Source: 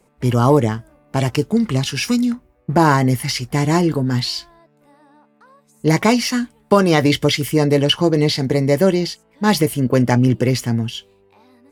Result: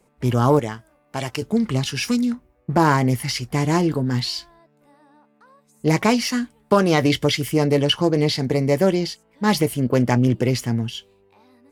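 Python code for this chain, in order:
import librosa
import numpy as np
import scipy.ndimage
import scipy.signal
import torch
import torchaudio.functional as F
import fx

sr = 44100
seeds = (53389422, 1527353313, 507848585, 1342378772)

y = fx.low_shelf(x, sr, hz=460.0, db=-9.5, at=(0.59, 1.42))
y = fx.doppler_dist(y, sr, depth_ms=0.11)
y = y * 10.0 ** (-3.0 / 20.0)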